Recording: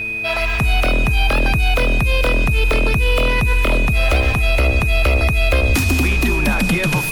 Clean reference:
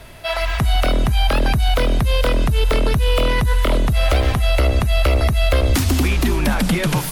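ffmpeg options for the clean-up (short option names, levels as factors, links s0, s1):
-af "bandreject=f=110:t=h:w=4,bandreject=f=220:t=h:w=4,bandreject=f=330:t=h:w=4,bandreject=f=440:t=h:w=4,bandreject=f=2500:w=30"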